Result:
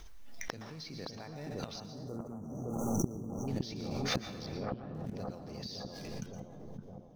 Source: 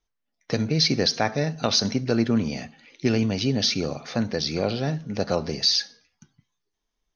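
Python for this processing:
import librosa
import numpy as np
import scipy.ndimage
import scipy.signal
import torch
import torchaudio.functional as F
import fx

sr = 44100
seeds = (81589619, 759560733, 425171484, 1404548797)

p1 = fx.low_shelf(x, sr, hz=61.0, db=11.0)
p2 = fx.quant_companded(p1, sr, bits=4)
p3 = p1 + (p2 * librosa.db_to_amplitude(-8.0))
p4 = fx.gate_flip(p3, sr, shuts_db=-21.0, range_db=-31)
p5 = fx.brickwall_bandstop(p4, sr, low_hz=1400.0, high_hz=5700.0, at=(1.8, 3.48))
p6 = fx.air_absorb(p5, sr, metres=330.0, at=(4.46, 4.95))
p7 = p6 + fx.echo_bbd(p6, sr, ms=564, stages=4096, feedback_pct=69, wet_db=-4.0, dry=0)
p8 = fx.rev_plate(p7, sr, seeds[0], rt60_s=0.75, hf_ratio=0.8, predelay_ms=105, drr_db=9.0)
p9 = fx.pre_swell(p8, sr, db_per_s=26.0)
y = p9 * librosa.db_to_amplitude(1.5)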